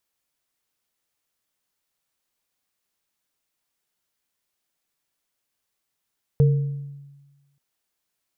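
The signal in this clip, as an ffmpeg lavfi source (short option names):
-f lavfi -i "aevalsrc='0.266*pow(10,-3*t/1.28)*sin(2*PI*141*t)+0.0944*pow(10,-3*t/0.64)*sin(2*PI*457*t)':d=1.18:s=44100"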